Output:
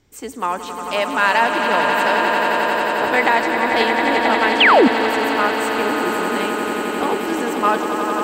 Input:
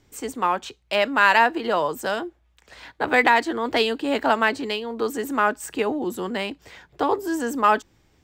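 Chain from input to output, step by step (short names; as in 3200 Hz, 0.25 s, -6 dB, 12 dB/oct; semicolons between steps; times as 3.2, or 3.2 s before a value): swelling echo 89 ms, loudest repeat 8, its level -8 dB; 4.6–4.88 painted sound fall 210–3600 Hz -11 dBFS; 4.82–5.38 crackle 82/s -> 31/s -28 dBFS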